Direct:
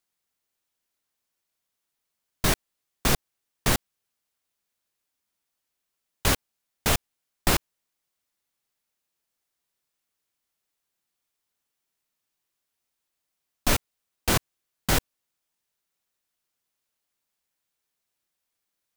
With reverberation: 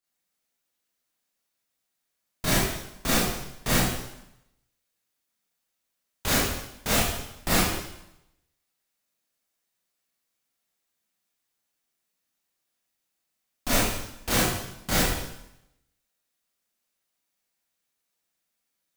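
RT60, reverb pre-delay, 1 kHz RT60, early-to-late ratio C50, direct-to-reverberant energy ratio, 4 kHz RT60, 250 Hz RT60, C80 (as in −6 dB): 0.85 s, 23 ms, 0.85 s, −1.5 dB, −9.5 dB, 0.85 s, 0.90 s, 2.0 dB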